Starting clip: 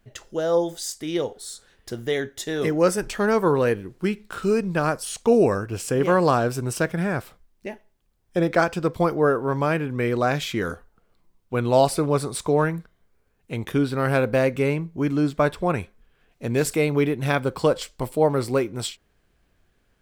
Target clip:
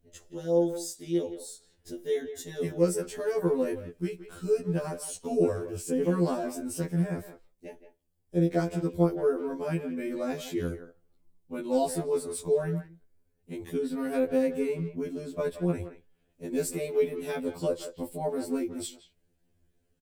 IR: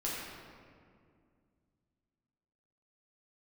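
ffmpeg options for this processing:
-filter_complex "[0:a]firequalizer=gain_entry='entry(320,0);entry(1200,-14);entry(1700,-10);entry(8200,0)':delay=0.05:min_phase=1,asplit=2[a][b];[b]adelay=170,highpass=300,lowpass=3.4k,asoftclip=type=hard:threshold=-19dB,volume=-11dB[c];[a][c]amix=inputs=2:normalize=0,afftfilt=real='re*2*eq(mod(b,4),0)':imag='im*2*eq(mod(b,4),0)':win_size=2048:overlap=0.75,volume=-3dB"

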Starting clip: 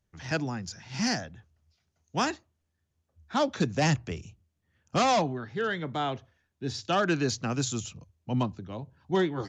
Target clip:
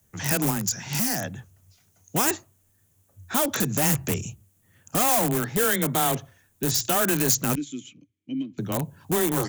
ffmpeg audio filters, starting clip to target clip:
-filter_complex "[0:a]alimiter=level_in=1dB:limit=-24dB:level=0:latency=1:release=113,volume=-1dB,asettb=1/sr,asplit=3[a][b][c];[a]atrim=end=7.554[d];[b]atrim=start=7.55:end=8.58,asetpts=PTS-STARTPTS,afade=t=in:d=0.004:c=qsin,afade=t=out:st=1.026:d=0.004:c=qsin,asplit=3[e][f][g];[e]bandpass=f=270:t=q:w=8,volume=0dB[h];[f]bandpass=f=2.29k:t=q:w=8,volume=-6dB[i];[g]bandpass=f=3.01k:t=q:w=8,volume=-9dB[j];[h][i][j]amix=inputs=3:normalize=0[k];[c]atrim=start=8.576[l];[d][k]acrossfade=d=0.004:c1=hsin:c2=qsin[m];[m][l]acrossfade=d=0.004:c1=qsin:c2=hsin,afreqshift=15,asplit=2[n][o];[o]aeval=exprs='(mod(31.6*val(0)+1,2)-1)/31.6':c=same,volume=-8dB[p];[n][p]amix=inputs=2:normalize=0,asettb=1/sr,asplit=3[q][r][s];[q]atrim=end=0.504[t];[r]atrim=start=0.5:end=1.24,asetpts=PTS-STARTPTS,afade=t=in:d=0.004:c=qsin,afade=t=out:st=0.736:d=0.004:c=qsin,acompressor=threshold=-33dB:ratio=6[u];[s]atrim=start=1.236[v];[t][u]acrossfade=d=0.004:c1=hsin:c2=qsin[w];[w][v]acrossfade=d=0.004:c1=qsin:c2=hsin,aexciter=amount=6:drive=4.1:freq=6.8k,volume=8dB"

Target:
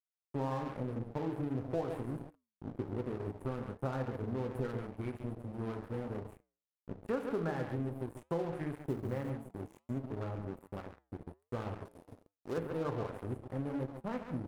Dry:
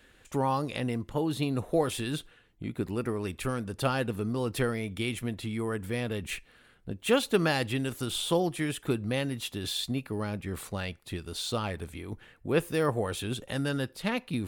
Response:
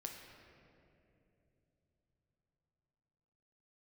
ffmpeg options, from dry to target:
-filter_complex "[1:a]atrim=start_sample=2205,atrim=end_sample=3969[a];[0:a][a]afir=irnorm=-1:irlink=0,afwtdn=0.0126,asuperstop=centerf=4000:order=4:qfactor=0.5,aecho=1:1:137:0.398,aeval=exprs='sgn(val(0))*max(abs(val(0))-0.0075,0)':c=same,asettb=1/sr,asplit=3[b][c][d];[b]atrim=end=8.794[e];[c]atrim=start=8.79:end=9.3,asetpts=PTS-STARTPTS,afade=t=in:d=0.004:c=qsin,afade=t=out:st=0.506:d=0.004:c=qsin,acrusher=bits=8:mode=log:mix=0:aa=0.000001[f];[d]atrim=start=9.296[g];[e][f]acrossfade=d=0.004:c1=hsin:c2=qsin[h];[h][g]acrossfade=d=0.004:c1=qsin:c2=hsin,flanger=delay=4.9:depth=3.7:regen=-88:speed=1.3:shape=triangular,acompressor=threshold=-40dB:ratio=2.5,asettb=1/sr,asplit=3[i][j][k];[i]atrim=end=11.854[l];[j]atrim=start=11.85:end=12.58,asetpts=PTS-STARTPTS,afade=t=in:d=0.004:c=qsin,afade=t=out:st=0.726:d=0.004:c=qsin,bass=f=250:g=-8,treble=f=4k:g=12[m];[k]atrim=start=12.576[n];[l][m]acrossfade=d=0.004:c1=hsin:c2=qsin[o];[o][n]acrossfade=d=0.004:c1=qsin:c2=hsin,volume=6.5dB"

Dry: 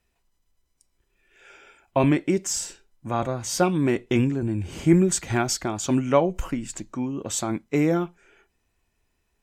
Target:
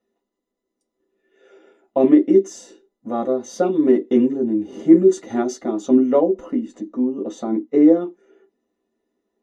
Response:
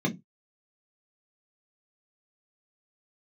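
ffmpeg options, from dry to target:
-filter_complex "[0:a]asettb=1/sr,asplit=3[a][b][c];[a]atrim=end=5.904[d];[b]atrim=start=5.9:end=8.01,asetpts=PTS-STARTPTS,afade=t=in:d=0.004:c=qsin,afade=t=out:st=2.106:d=0.004:c=qsin,lowpass=f=3.8k:p=1[e];[c]atrim=start=8.006[f];[d][e]acrossfade=d=0.004:c1=hsin:c2=qsin[g];[g][f]acrossfade=d=0.004:c1=qsin:c2=hsin[h];[1:a]atrim=start_sample=2205,asetrate=74970,aresample=44100[i];[h][i]afir=irnorm=-1:irlink=0,volume=-10dB"

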